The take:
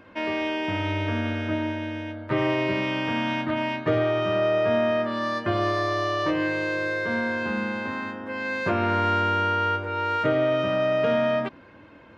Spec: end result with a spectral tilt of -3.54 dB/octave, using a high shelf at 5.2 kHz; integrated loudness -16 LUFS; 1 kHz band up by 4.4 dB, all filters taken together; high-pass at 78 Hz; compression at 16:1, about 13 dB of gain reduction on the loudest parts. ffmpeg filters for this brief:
-af "highpass=78,equalizer=f=1000:t=o:g=5.5,highshelf=f=5200:g=4.5,acompressor=threshold=0.0316:ratio=16,volume=7.5"

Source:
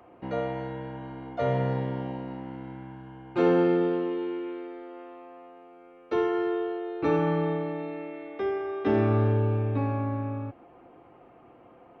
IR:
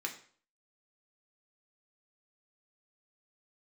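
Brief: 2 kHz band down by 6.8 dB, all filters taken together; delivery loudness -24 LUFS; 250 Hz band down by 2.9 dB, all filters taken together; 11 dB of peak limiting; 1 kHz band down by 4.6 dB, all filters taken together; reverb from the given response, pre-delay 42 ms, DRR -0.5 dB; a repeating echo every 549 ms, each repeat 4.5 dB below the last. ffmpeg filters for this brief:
-filter_complex "[0:a]equalizer=f=250:t=o:g=-4,equalizer=f=1000:t=o:g=-4.5,equalizer=f=2000:t=o:g=-7,alimiter=level_in=1.19:limit=0.0631:level=0:latency=1,volume=0.841,aecho=1:1:549|1098|1647|2196|2745|3294|3843|4392|4941:0.596|0.357|0.214|0.129|0.0772|0.0463|0.0278|0.0167|0.01,asplit=2[s0][s1];[1:a]atrim=start_sample=2205,adelay=42[s2];[s1][s2]afir=irnorm=-1:irlink=0,volume=0.841[s3];[s0][s3]amix=inputs=2:normalize=0,volume=2.82"

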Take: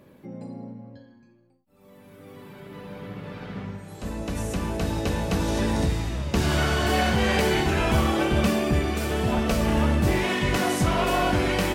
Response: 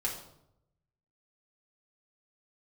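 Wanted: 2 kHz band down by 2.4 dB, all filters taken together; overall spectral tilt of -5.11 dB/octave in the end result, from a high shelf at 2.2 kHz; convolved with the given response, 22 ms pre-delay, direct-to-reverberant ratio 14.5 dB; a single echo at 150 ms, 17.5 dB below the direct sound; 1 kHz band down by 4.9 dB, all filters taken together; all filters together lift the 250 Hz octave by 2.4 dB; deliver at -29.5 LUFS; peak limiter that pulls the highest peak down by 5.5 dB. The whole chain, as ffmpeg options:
-filter_complex "[0:a]equalizer=f=250:t=o:g=3.5,equalizer=f=1000:t=o:g=-7.5,equalizer=f=2000:t=o:g=-3,highshelf=f=2200:g=4,alimiter=limit=0.158:level=0:latency=1,aecho=1:1:150:0.133,asplit=2[s0][s1];[1:a]atrim=start_sample=2205,adelay=22[s2];[s1][s2]afir=irnorm=-1:irlink=0,volume=0.119[s3];[s0][s3]amix=inputs=2:normalize=0,volume=0.668"

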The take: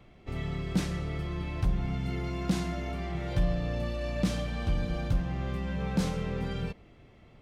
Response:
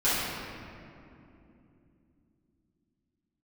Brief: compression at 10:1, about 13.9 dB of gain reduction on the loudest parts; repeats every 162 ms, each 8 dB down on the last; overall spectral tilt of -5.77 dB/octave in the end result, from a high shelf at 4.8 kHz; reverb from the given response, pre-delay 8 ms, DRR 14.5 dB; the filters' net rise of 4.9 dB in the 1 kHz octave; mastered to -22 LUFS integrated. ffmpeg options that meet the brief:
-filter_complex "[0:a]equalizer=f=1000:t=o:g=6.5,highshelf=f=4800:g=5,acompressor=threshold=0.0158:ratio=10,aecho=1:1:162|324|486|648|810:0.398|0.159|0.0637|0.0255|0.0102,asplit=2[s0][s1];[1:a]atrim=start_sample=2205,adelay=8[s2];[s1][s2]afir=irnorm=-1:irlink=0,volume=0.0355[s3];[s0][s3]amix=inputs=2:normalize=0,volume=8.41"

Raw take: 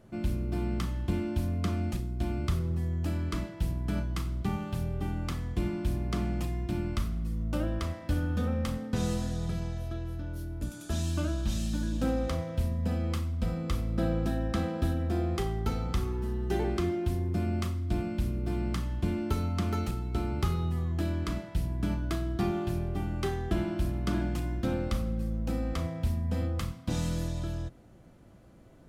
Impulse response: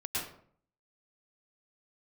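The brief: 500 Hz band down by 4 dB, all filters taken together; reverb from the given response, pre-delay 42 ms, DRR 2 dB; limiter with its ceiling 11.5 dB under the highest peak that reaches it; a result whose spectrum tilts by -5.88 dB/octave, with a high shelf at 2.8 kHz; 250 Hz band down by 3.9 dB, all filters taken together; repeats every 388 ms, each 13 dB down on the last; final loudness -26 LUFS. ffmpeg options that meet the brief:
-filter_complex "[0:a]equalizer=f=250:t=o:g=-4.5,equalizer=f=500:t=o:g=-4,highshelf=f=2800:g=8.5,alimiter=level_in=1.78:limit=0.0631:level=0:latency=1,volume=0.562,aecho=1:1:388|776|1164:0.224|0.0493|0.0108,asplit=2[s0][s1];[1:a]atrim=start_sample=2205,adelay=42[s2];[s1][s2]afir=irnorm=-1:irlink=0,volume=0.473[s3];[s0][s3]amix=inputs=2:normalize=0,volume=2.37"

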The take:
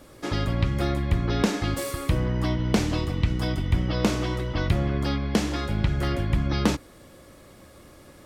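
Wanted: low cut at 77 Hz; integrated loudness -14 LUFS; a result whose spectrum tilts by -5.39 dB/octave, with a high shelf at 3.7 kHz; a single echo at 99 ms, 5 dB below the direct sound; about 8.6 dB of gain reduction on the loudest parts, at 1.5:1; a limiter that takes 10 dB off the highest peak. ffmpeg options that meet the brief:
-af "highpass=77,highshelf=f=3700:g=4,acompressor=threshold=0.00794:ratio=1.5,alimiter=level_in=1.19:limit=0.0631:level=0:latency=1,volume=0.841,aecho=1:1:99:0.562,volume=10.6"

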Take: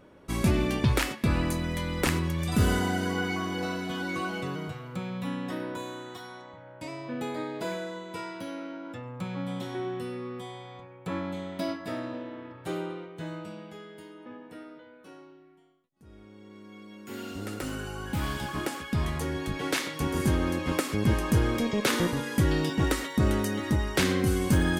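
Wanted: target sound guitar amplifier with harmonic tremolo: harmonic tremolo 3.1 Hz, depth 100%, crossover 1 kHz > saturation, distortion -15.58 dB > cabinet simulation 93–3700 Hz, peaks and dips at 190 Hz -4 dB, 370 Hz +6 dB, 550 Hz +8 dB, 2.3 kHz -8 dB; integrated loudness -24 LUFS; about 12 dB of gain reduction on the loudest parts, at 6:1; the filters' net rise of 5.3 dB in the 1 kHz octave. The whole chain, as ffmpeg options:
-filter_complex "[0:a]equalizer=f=1000:t=o:g=6,acompressor=threshold=0.0251:ratio=6,acrossover=split=1000[s0][s1];[s0]aeval=exprs='val(0)*(1-1/2+1/2*cos(2*PI*3.1*n/s))':c=same[s2];[s1]aeval=exprs='val(0)*(1-1/2-1/2*cos(2*PI*3.1*n/s))':c=same[s3];[s2][s3]amix=inputs=2:normalize=0,asoftclip=threshold=0.0237,highpass=93,equalizer=f=190:t=q:w=4:g=-4,equalizer=f=370:t=q:w=4:g=6,equalizer=f=550:t=q:w=4:g=8,equalizer=f=2300:t=q:w=4:g=-8,lowpass=f=3700:w=0.5412,lowpass=f=3700:w=1.3066,volume=7.5"

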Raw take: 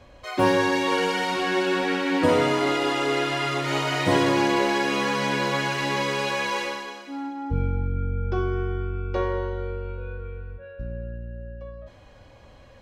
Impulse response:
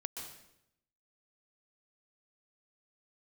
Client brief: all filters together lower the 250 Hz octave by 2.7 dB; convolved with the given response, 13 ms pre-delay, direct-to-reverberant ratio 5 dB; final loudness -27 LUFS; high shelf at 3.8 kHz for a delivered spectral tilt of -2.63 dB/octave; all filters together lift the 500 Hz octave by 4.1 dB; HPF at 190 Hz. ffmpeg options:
-filter_complex "[0:a]highpass=190,equalizer=f=250:t=o:g=-7,equalizer=f=500:t=o:g=7.5,highshelf=f=3800:g=-9,asplit=2[s0][s1];[1:a]atrim=start_sample=2205,adelay=13[s2];[s1][s2]afir=irnorm=-1:irlink=0,volume=0.631[s3];[s0][s3]amix=inputs=2:normalize=0,volume=0.562"

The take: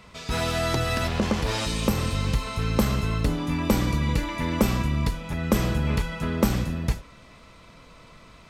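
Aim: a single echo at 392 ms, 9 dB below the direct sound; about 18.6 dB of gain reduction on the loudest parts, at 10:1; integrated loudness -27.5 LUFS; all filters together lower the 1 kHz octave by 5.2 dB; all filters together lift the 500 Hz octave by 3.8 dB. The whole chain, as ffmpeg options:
-af "equalizer=f=500:t=o:g=7,equalizer=f=1000:t=o:g=-9,acompressor=threshold=0.0158:ratio=10,aecho=1:1:392:0.355,volume=4.47"

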